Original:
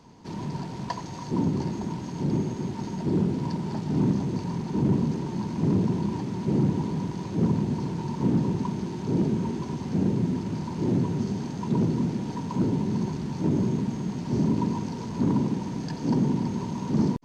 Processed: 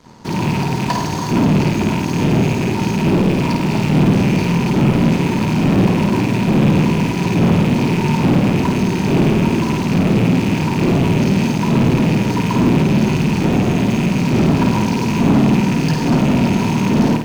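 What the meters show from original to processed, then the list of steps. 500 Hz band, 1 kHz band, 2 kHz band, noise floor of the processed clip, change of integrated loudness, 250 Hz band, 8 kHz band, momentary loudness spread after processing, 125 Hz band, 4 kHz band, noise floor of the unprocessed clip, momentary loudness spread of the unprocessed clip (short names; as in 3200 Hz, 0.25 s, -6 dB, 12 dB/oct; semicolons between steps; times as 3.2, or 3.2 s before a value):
+12.5 dB, +14.5 dB, +22.5 dB, -20 dBFS, +12.0 dB, +11.5 dB, n/a, 4 LU, +11.5 dB, +18.5 dB, -35 dBFS, 7 LU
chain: rattling part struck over -32 dBFS, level -30 dBFS; sample leveller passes 3; flutter echo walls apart 8.9 m, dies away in 0.59 s; in parallel at -5 dB: sample gate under -25 dBFS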